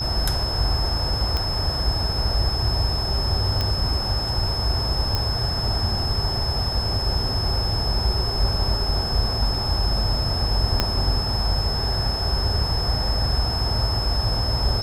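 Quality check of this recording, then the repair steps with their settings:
whistle 5,200 Hz −26 dBFS
0:01.37: click −11 dBFS
0:03.61: click −10 dBFS
0:05.15: click −9 dBFS
0:10.80: click −5 dBFS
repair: click removal
notch filter 5,200 Hz, Q 30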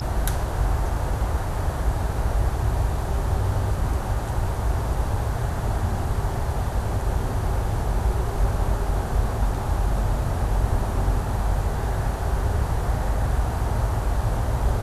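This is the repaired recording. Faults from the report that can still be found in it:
0:10.80: click

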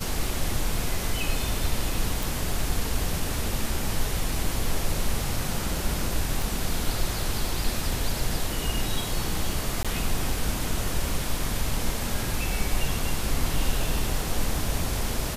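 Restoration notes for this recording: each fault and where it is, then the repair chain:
0:02.23: click
0:06.42: click
0:09.83–0:09.85: drop-out 16 ms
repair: click removal
repair the gap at 0:09.83, 16 ms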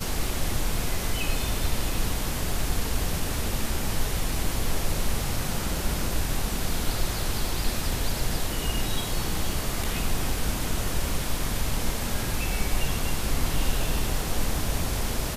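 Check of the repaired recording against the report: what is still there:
none of them is left

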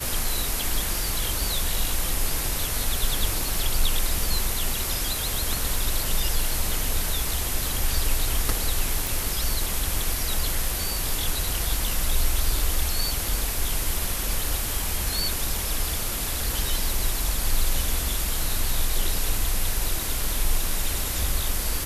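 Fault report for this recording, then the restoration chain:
0:09.07: click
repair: click removal

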